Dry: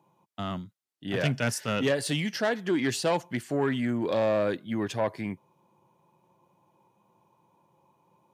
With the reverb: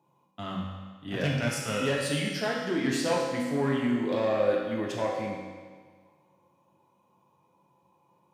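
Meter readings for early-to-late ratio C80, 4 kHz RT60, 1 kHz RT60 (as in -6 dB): 3.0 dB, 1.5 s, 1.6 s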